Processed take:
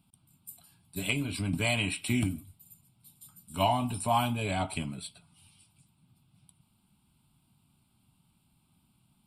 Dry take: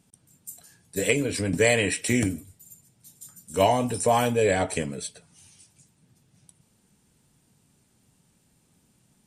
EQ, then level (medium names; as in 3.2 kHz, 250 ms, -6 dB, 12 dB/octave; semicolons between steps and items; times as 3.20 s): static phaser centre 1.8 kHz, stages 6; -1.5 dB